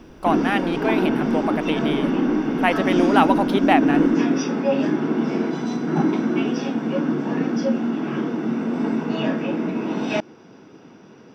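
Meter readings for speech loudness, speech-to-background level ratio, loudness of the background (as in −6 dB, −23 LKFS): −23.5 LKFS, −1.5 dB, −22.0 LKFS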